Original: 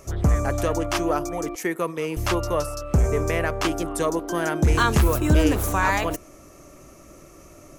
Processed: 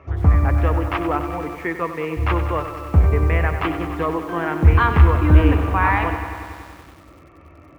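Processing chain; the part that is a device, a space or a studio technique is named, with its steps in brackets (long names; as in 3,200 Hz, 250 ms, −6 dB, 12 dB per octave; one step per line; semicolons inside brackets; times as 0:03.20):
bass cabinet (loudspeaker in its box 62–2,400 Hz, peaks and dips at 77 Hz +8 dB, 130 Hz −8 dB, 210 Hz −9 dB, 380 Hz −7 dB, 590 Hz −9 dB, 1,500 Hz −4 dB)
feedback echo at a low word length 95 ms, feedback 80%, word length 8 bits, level −10.5 dB
level +5 dB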